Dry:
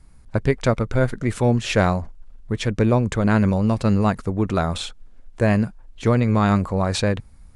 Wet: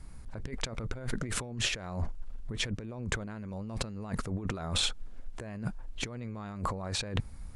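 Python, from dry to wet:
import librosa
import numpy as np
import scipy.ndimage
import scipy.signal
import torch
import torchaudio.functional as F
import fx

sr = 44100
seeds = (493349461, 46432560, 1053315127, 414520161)

y = fx.over_compress(x, sr, threshold_db=-30.0, ratio=-1.0)
y = y * 10.0 ** (-6.0 / 20.0)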